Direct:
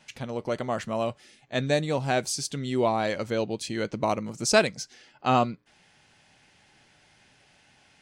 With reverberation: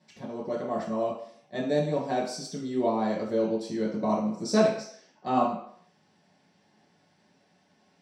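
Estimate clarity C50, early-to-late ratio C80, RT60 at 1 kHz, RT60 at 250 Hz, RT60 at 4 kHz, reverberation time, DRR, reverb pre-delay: 4.5 dB, 8.0 dB, 0.65 s, 0.50 s, 0.55 s, 0.60 s, -5.5 dB, 3 ms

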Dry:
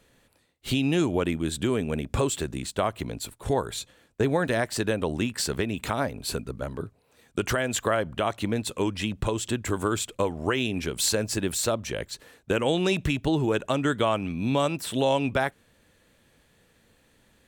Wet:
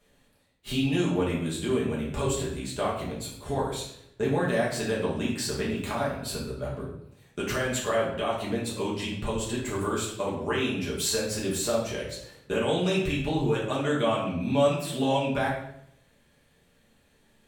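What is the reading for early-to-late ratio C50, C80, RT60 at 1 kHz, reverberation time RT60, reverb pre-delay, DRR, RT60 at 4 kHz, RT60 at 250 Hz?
3.5 dB, 7.5 dB, 0.65 s, 0.75 s, 5 ms, -6.0 dB, 0.60 s, 0.85 s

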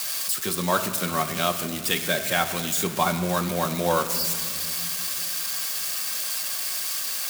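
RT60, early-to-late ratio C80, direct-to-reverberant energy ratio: 2.3 s, 11.0 dB, 4.5 dB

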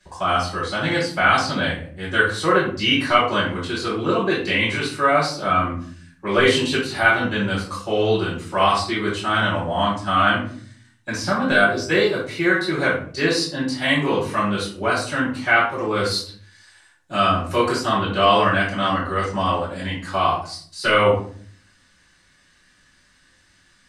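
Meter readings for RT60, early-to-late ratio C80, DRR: 0.50 s, 9.5 dB, -9.5 dB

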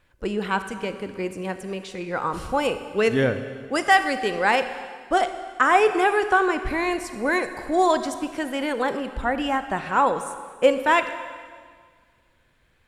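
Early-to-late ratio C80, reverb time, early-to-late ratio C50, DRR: 11.5 dB, 1.8 s, 10.5 dB, 9.5 dB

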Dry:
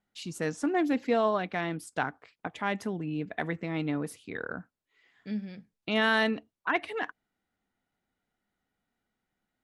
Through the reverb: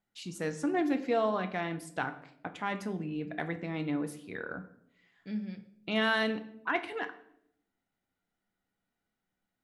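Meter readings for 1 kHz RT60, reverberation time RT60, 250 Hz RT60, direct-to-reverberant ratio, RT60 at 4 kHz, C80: 0.60 s, 0.75 s, 1.0 s, 7.5 dB, 0.50 s, 16.5 dB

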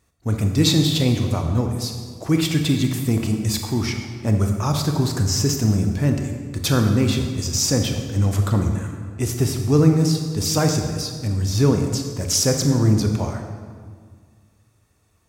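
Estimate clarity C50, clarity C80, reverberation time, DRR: 5.5 dB, 6.5 dB, 1.8 s, 4.0 dB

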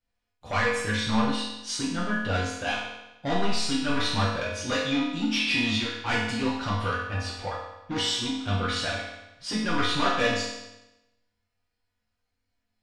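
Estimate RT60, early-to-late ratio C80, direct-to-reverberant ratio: 0.95 s, 4.0 dB, -8.0 dB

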